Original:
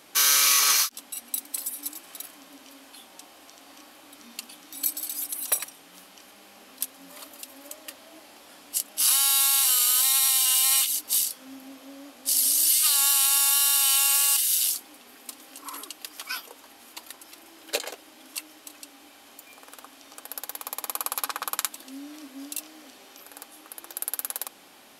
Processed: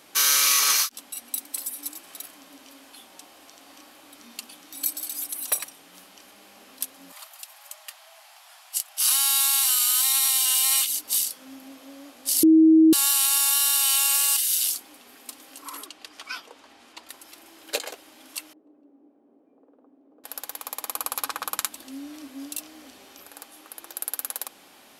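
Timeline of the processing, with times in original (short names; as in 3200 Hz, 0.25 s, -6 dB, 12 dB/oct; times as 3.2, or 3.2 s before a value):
7.12–10.25 steep high-pass 650 Hz 72 dB/oct
12.43–12.93 bleep 319 Hz -11 dBFS
15.86–17.09 air absorption 73 m
18.53–20.24 Butterworth band-pass 300 Hz, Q 1
20.94–23.28 bell 66 Hz +9.5 dB 2.9 oct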